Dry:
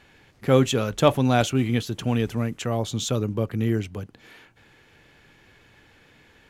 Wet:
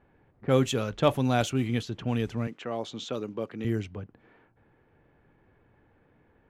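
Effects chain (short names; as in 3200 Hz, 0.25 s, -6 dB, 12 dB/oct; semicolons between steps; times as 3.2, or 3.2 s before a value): low-pass opened by the level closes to 1000 Hz, open at -17 dBFS; 2.47–3.65 HPF 250 Hz 12 dB/oct; gain -5 dB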